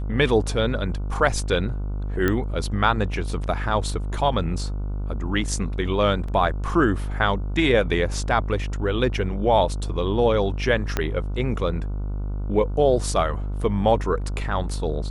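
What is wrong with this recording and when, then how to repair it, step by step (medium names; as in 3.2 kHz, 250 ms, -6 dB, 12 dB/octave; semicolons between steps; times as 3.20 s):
buzz 50 Hz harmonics 30 -27 dBFS
2.28 s: pop -9 dBFS
6.28 s: dropout 4.3 ms
10.97 s: pop -8 dBFS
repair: de-click; de-hum 50 Hz, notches 30; interpolate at 6.28 s, 4.3 ms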